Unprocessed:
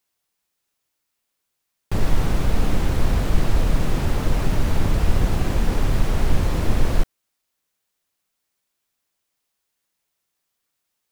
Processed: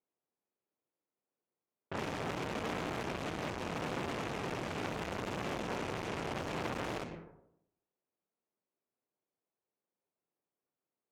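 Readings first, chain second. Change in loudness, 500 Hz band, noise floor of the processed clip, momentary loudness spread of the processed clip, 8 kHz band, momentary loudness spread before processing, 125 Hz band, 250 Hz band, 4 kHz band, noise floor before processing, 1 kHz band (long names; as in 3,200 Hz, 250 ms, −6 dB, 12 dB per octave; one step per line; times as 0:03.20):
−14.5 dB, −8.5 dB, below −85 dBFS, 3 LU, −13.5 dB, 2 LU, −21.0 dB, −13.0 dB, −9.5 dB, −78 dBFS, −7.5 dB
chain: graphic EQ with 15 bands 400 Hz +4 dB, 2,500 Hz +7 dB, 6,300 Hz +5 dB
speech leveller 2 s
high-pass filter 150 Hz 12 dB per octave
dense smooth reverb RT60 0.81 s, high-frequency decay 0.6×, pre-delay 85 ms, DRR 11 dB
low-pass that shuts in the quiet parts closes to 770 Hz, open at −22 dBFS
high-shelf EQ 5,300 Hz −8 dB
saturating transformer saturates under 2,100 Hz
level −5.5 dB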